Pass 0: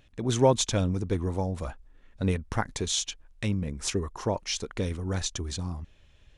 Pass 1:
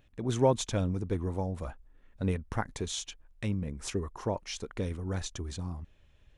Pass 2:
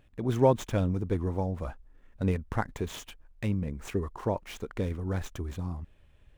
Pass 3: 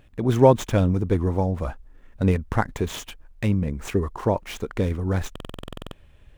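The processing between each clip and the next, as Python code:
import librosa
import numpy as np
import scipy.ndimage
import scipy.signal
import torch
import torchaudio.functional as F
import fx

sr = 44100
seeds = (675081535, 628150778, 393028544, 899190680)

y1 = fx.peak_eq(x, sr, hz=5200.0, db=-5.5, octaves=2.0)
y1 = y1 * 10.0 ** (-3.5 / 20.0)
y2 = scipy.signal.medfilt(y1, 9)
y2 = y2 * 10.0 ** (2.5 / 20.0)
y3 = fx.buffer_glitch(y2, sr, at_s=(5.31,), block=2048, repeats=12)
y3 = y3 * 10.0 ** (7.5 / 20.0)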